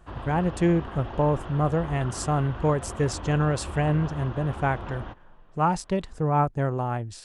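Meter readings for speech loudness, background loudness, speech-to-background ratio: −26.0 LKFS, −38.0 LKFS, 12.0 dB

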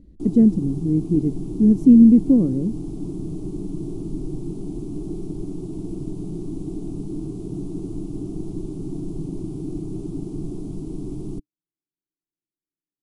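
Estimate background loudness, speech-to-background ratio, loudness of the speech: −31.5 LKFS, 15.0 dB, −16.5 LKFS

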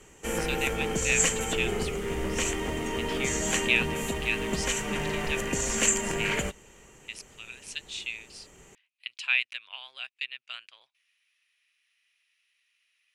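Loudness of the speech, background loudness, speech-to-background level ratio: −32.5 LKFS, −28.5 LKFS, −4.0 dB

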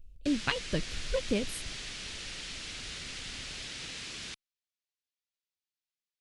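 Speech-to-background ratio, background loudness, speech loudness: 5.5 dB, −39.5 LKFS, −34.0 LKFS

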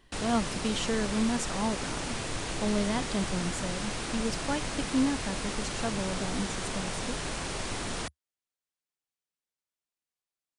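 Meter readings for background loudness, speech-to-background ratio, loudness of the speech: −34.5 LKFS, 1.5 dB, −33.0 LKFS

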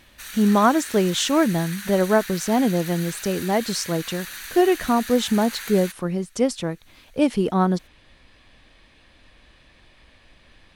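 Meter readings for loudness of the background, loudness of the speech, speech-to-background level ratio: −34.0 LKFS, −22.0 LKFS, 12.0 dB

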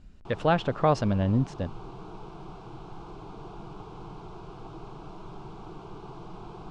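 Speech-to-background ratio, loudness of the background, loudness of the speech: 18.0 dB, −44.5 LKFS, −26.5 LKFS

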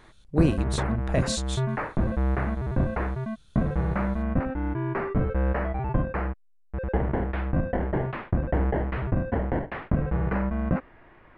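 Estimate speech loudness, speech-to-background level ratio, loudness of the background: −29.5 LKFS, −1.5 dB, −28.0 LKFS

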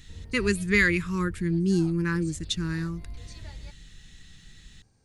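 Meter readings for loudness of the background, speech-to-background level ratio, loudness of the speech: −43.5 LKFS, 17.5 dB, −26.0 LKFS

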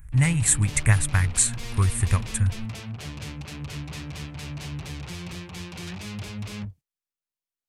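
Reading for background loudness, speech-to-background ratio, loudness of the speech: −36.0 LKFS, 13.5 dB, −22.5 LKFS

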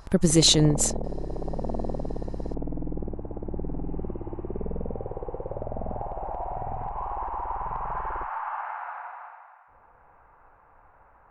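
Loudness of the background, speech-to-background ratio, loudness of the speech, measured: −34.5 LKFS, 14.5 dB, −20.0 LKFS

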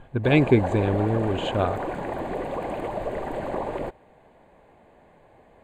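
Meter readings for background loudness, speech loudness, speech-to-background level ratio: −30.5 LKFS, −23.0 LKFS, 7.5 dB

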